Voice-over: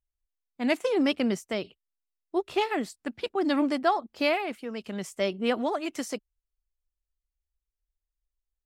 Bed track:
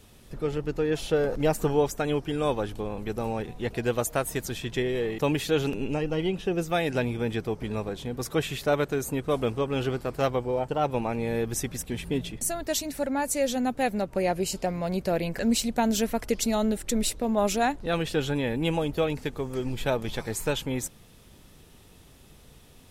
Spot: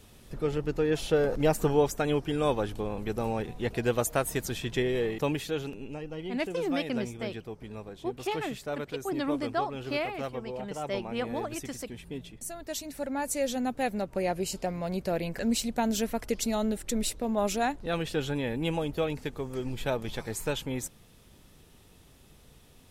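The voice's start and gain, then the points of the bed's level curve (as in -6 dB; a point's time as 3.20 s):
5.70 s, -6.0 dB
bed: 5.05 s -0.5 dB
5.77 s -10.5 dB
12.39 s -10.5 dB
13.28 s -3.5 dB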